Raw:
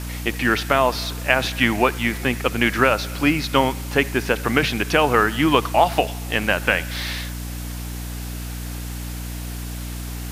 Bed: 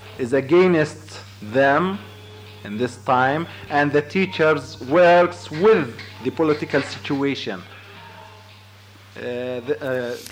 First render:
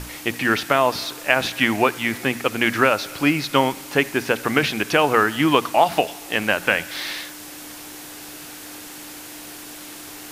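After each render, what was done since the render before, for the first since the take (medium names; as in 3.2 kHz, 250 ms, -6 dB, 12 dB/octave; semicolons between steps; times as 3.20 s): hum notches 60/120/180/240 Hz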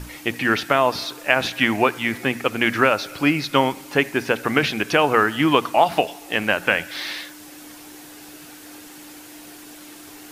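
noise reduction 6 dB, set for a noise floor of -38 dBFS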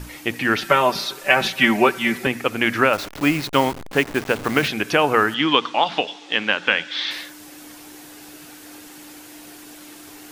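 0.62–2.27 s: comb 5.2 ms, depth 93%; 2.93–4.68 s: send-on-delta sampling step -27 dBFS; 5.34–7.11 s: cabinet simulation 210–6200 Hz, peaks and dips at 370 Hz -4 dB, 660 Hz -8 dB, 3.4 kHz +10 dB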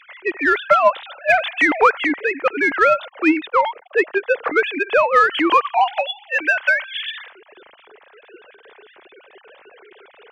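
formants replaced by sine waves; in parallel at -6 dB: saturation -17.5 dBFS, distortion -9 dB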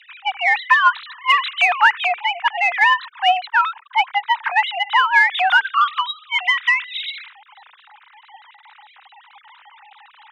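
frequency shift +420 Hz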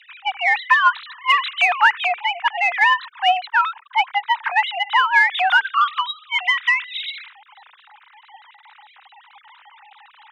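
trim -1 dB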